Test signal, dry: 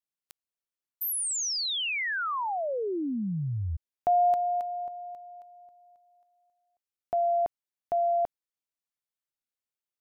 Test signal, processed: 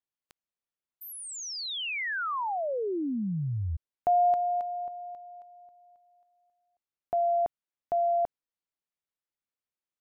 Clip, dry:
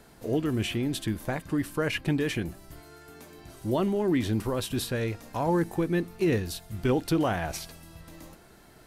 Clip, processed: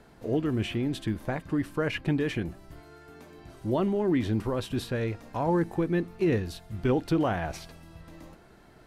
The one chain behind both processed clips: LPF 2700 Hz 6 dB/oct

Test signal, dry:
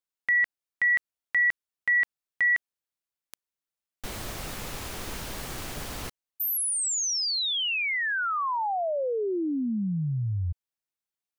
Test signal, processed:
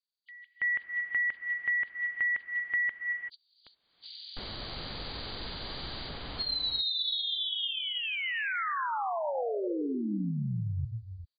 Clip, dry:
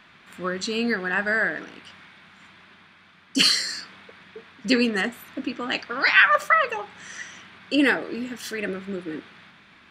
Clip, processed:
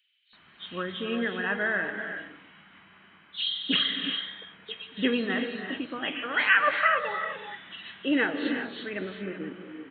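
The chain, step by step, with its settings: nonlinear frequency compression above 2900 Hz 4:1; bands offset in time highs, lows 0.33 s, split 3500 Hz; non-linear reverb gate 0.41 s rising, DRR 5.5 dB; gain -5 dB

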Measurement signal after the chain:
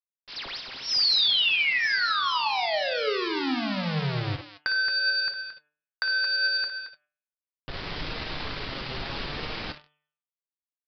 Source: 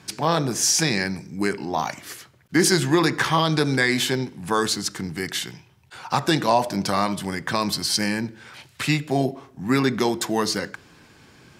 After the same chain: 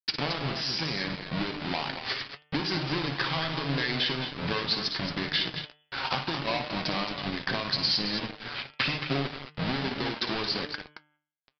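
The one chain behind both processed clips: half-waves squared off; compressor 12:1, threshold -31 dBFS; high shelf 2100 Hz +10 dB; on a send: tapped delay 57/100/223 ms -9/-18.5/-7.5 dB; on the sum: low-pass opened by the level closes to 2800 Hz, open at -21.5 dBFS; sample gate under -33.5 dBFS; downsampling 11025 Hz; de-hum 149.6 Hz, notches 23; flange 0.73 Hz, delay 6.3 ms, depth 1.4 ms, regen +63%; gain +5.5 dB

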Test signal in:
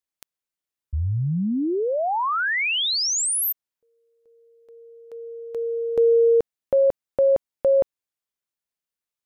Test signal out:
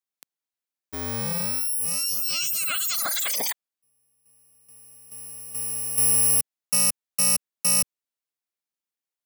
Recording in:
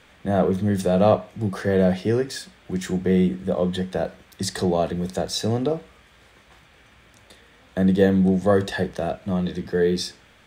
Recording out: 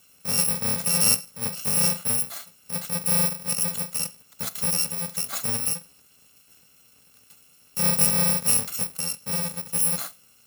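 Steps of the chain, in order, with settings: FFT order left unsorted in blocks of 128 samples; HPF 160 Hz 12 dB/oct; gain -3 dB

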